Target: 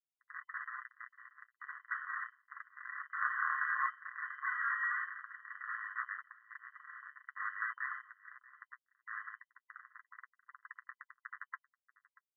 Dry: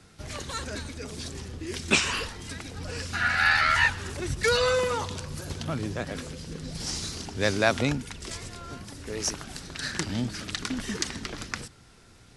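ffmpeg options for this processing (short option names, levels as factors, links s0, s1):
-filter_complex "[0:a]alimiter=limit=0.158:level=0:latency=1:release=283,asettb=1/sr,asplit=3[s0][s1][s2];[s0]atrim=end=9.764[s3];[s1]atrim=start=9.76:end=11.26,asetpts=PTS-STARTPTS,afade=t=in:d=0.004:c=qsin,afade=t=out:st=1.496:d=0.004:c=qsin,acompressor=threshold=0.02:ratio=16[s4];[s2]atrim=start=11.256[s5];[s3][s4]acrossfade=d=0.004:c1=hsin:c2=qsin[s6];[s6][s5]acrossfade=d=0.004:c1=qsin:c2=hsin,acrusher=bits=4:mix=0:aa=0.000001,adynamicsmooth=sensitivity=2.5:basefreq=680,aeval=exprs='0.133*(cos(1*acos(clip(val(0)/0.133,-1,1)))-cos(1*PI/2))+0.0596*(cos(3*acos(clip(val(0)/0.133,-1,1)))-cos(3*PI/2))+0.0335*(cos(8*acos(clip(val(0)/0.133,-1,1)))-cos(8*PI/2))':c=same,flanger=delay=7.1:depth=1.3:regen=-24:speed=0.28:shape=sinusoidal,asplit=2[s7][s8];[s8]aecho=0:1:634:0.0841[s9];[s7][s9]amix=inputs=2:normalize=0,lowpass=f=2500:t=q:w=0.5098,lowpass=f=2500:t=q:w=0.6013,lowpass=f=2500:t=q:w=0.9,lowpass=f=2500:t=q:w=2.563,afreqshift=-2900,afftfilt=real='re*eq(mod(floor(b*sr/1024/1000),2),1)':imag='im*eq(mod(floor(b*sr/1024/1000),2),1)':win_size=1024:overlap=0.75,volume=1.33"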